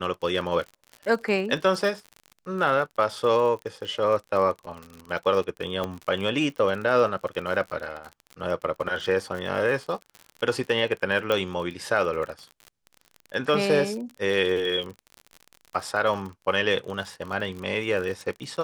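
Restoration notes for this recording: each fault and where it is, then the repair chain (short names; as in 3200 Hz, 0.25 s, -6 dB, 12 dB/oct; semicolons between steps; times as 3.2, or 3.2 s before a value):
crackle 46/s -32 dBFS
5.84 pop -16 dBFS
11.32 pop -12 dBFS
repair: de-click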